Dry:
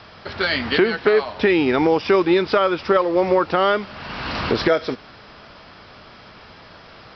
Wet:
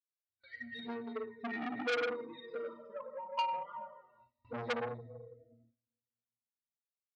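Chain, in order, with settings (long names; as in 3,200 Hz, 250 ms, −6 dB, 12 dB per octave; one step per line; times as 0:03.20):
spectral dynamics exaggerated over time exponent 3
high-pass filter 380 Hz 6 dB per octave
high-shelf EQ 4,400 Hz −10.5 dB
resonances in every octave A#, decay 0.35 s
rectangular room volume 1,500 cubic metres, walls mixed, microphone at 1.9 metres
noise gate with hold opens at −59 dBFS
flanger swept by the level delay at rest 3.4 ms, full sweep at −36.5 dBFS
saturating transformer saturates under 2,300 Hz
level +8 dB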